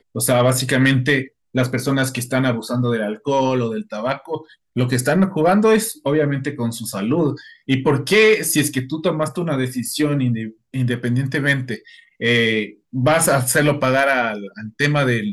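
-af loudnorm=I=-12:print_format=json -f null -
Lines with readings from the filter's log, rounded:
"input_i" : "-18.5",
"input_tp" : "-4.3",
"input_lra" : "2.6",
"input_thresh" : "-28.8",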